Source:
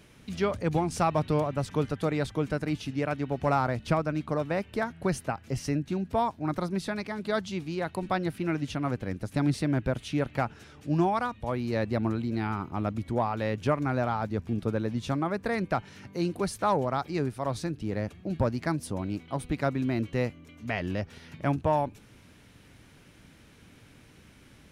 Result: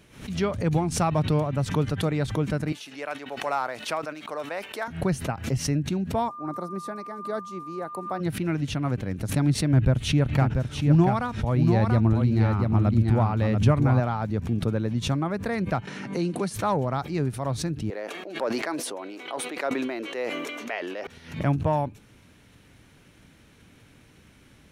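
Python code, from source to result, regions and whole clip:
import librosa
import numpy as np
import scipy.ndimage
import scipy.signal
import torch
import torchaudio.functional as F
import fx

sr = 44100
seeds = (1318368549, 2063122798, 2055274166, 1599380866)

y = fx.chain(x, sr, fx.highpass(hz=570.0, slope=12),
    fx.high_shelf(hz=8900.0, db=4.5),
    fx.sustainer(db_per_s=150.0), at=(2.72, 4.88))
y = fx.highpass(y, sr, hz=290.0, slope=12, at=(6.28, 8.19), fade=0.02)
y = fx.peak_eq(y, sr, hz=3000.0, db=-14.5, octaves=1.8, at=(6.28, 8.19), fade=0.02)
y = fx.dmg_tone(y, sr, hz=1200.0, level_db=-37.0, at=(6.28, 8.19), fade=0.02)
y = fx.chain(y, sr, fx.low_shelf(hz=130.0, db=11.0),
    fx.echo_single(ms=687, db=-5.0), at=(9.73, 14.0))
y = fx.chain(y, sr, fx.highpass(hz=160.0, slope=24),
    fx.resample_bad(factor=2, down='none', up='filtered'),
    fx.band_squash(depth_pct=70), at=(15.87, 16.54))
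y = fx.chain(y, sr, fx.highpass(hz=380.0, slope=24),
    fx.high_shelf(hz=4600.0, db=-5.0),
    fx.sustainer(db_per_s=24.0), at=(17.9, 21.07))
y = fx.notch(y, sr, hz=4900.0, q=19.0)
y = fx.dynamic_eq(y, sr, hz=130.0, q=1.0, threshold_db=-43.0, ratio=4.0, max_db=6)
y = fx.pre_swell(y, sr, db_per_s=120.0)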